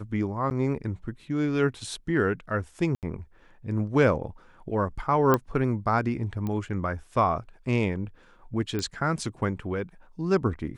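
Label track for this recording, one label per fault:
0.500000	0.510000	dropout 9.3 ms
2.950000	3.030000	dropout 78 ms
5.340000	5.340000	pop -9 dBFS
6.470000	6.470000	pop -20 dBFS
8.790000	8.790000	pop -17 dBFS

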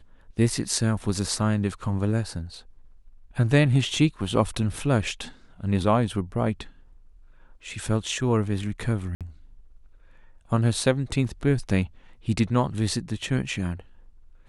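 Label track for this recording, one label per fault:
9.150000	9.210000	dropout 57 ms

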